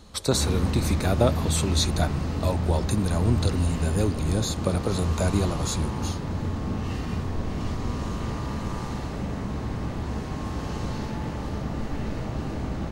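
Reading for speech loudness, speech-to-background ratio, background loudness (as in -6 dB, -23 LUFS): -27.0 LUFS, 3.0 dB, -30.0 LUFS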